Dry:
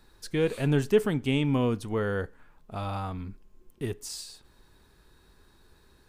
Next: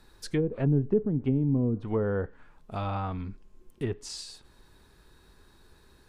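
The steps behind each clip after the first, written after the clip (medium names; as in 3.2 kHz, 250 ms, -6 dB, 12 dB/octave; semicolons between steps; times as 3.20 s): low-pass that closes with the level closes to 330 Hz, closed at -21.5 dBFS; trim +1.5 dB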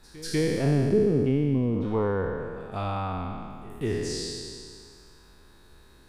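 spectral sustain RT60 2.17 s; pre-echo 194 ms -19 dB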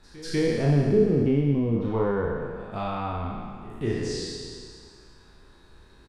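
distance through air 56 m; doubling 35 ms -4 dB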